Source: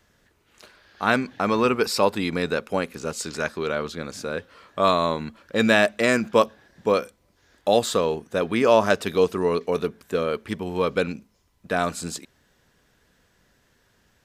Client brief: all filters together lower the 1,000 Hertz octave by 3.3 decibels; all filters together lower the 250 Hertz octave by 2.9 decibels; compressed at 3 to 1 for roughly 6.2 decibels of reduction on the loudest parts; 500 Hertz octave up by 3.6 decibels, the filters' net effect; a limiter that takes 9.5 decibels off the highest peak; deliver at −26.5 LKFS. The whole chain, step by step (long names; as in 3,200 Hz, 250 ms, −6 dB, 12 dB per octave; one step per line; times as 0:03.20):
parametric band 250 Hz −5.5 dB
parametric band 500 Hz +7 dB
parametric band 1,000 Hz −6.5 dB
downward compressor 3 to 1, threshold −18 dBFS
level +1.5 dB
brickwall limiter −14.5 dBFS